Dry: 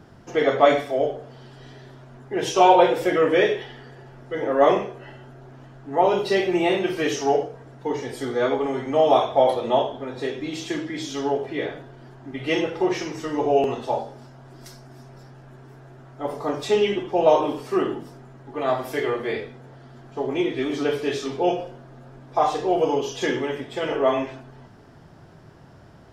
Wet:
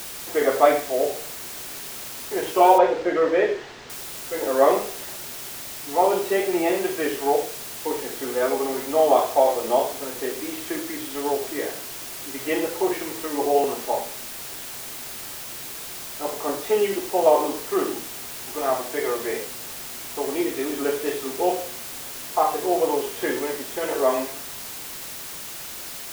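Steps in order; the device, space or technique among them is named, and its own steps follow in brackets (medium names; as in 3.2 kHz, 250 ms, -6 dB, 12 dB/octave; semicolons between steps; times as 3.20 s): wax cylinder (band-pass 280–2200 Hz; wow and flutter; white noise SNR 11 dB); 2.78–3.90 s: distance through air 160 m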